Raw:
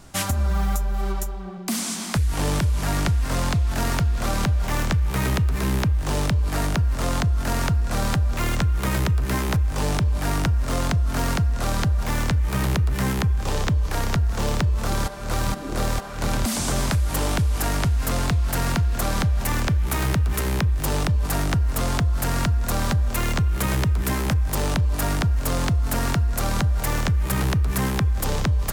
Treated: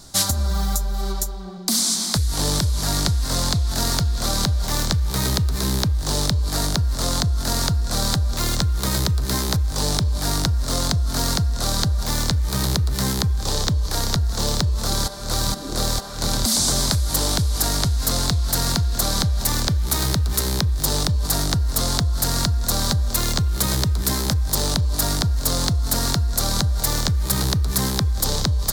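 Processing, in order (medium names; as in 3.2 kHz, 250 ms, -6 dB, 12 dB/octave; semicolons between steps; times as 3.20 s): resonant high shelf 3.3 kHz +7 dB, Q 3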